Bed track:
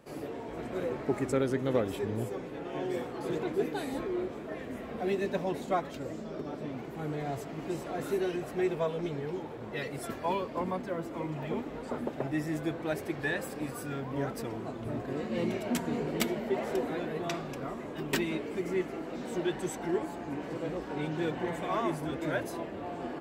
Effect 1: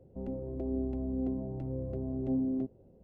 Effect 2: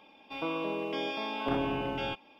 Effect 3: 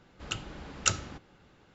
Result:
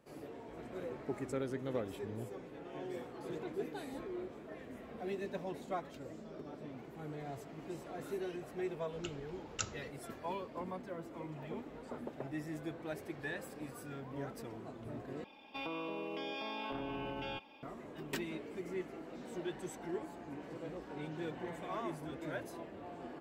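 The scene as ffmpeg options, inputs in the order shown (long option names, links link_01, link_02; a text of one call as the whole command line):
ffmpeg -i bed.wav -i cue0.wav -i cue1.wav -i cue2.wav -filter_complex "[0:a]volume=-9.5dB[link_01];[2:a]acompressor=threshold=-37dB:ratio=6:attack=3.2:release=140:knee=1:detection=peak[link_02];[link_01]asplit=2[link_03][link_04];[link_03]atrim=end=15.244[link_05];[link_02]atrim=end=2.39,asetpts=PTS-STARTPTS,volume=-0.5dB[link_06];[link_04]atrim=start=17.626[link_07];[3:a]atrim=end=1.74,asetpts=PTS-STARTPTS,volume=-12.5dB,afade=type=in:duration=0.004:curve=hsin,afade=type=out:start_time=1.736:duration=0.004:curve=hsin,adelay=8730[link_08];[link_05][link_06]acrossfade=duration=0.004:curve1=hsin:curve2=hsin[link_09];[link_09][link_07]acrossfade=duration=0.004:curve1=hsin:curve2=hsin[link_10];[link_10][link_08]amix=inputs=2:normalize=0" out.wav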